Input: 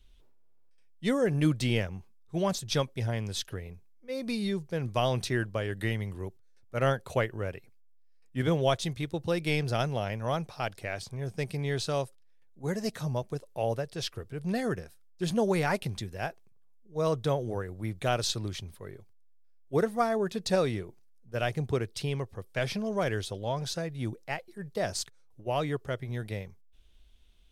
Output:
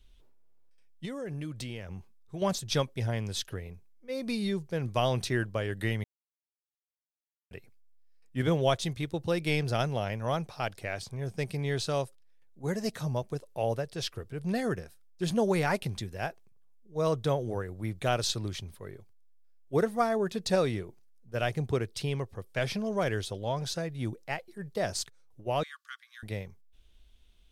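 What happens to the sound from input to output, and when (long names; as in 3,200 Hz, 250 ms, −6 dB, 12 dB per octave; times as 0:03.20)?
0:01.05–0:02.42: downward compressor, threshold −35 dBFS
0:06.04–0:07.51: silence
0:25.63–0:26.23: Chebyshev high-pass with heavy ripple 1,100 Hz, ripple 6 dB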